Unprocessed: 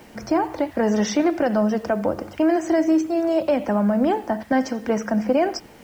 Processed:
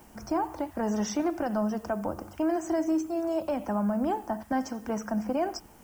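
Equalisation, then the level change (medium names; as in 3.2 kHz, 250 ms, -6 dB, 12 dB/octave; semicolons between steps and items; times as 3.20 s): graphic EQ 125/250/500/2000/4000 Hz -7/-5/-11/-11/-11 dB; 0.0 dB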